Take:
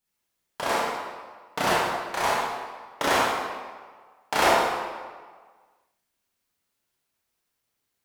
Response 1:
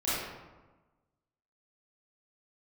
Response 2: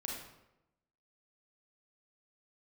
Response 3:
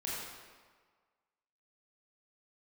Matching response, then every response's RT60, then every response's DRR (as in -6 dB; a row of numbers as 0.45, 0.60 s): 3; 1.2, 0.90, 1.6 s; -12.0, -2.0, -7.0 dB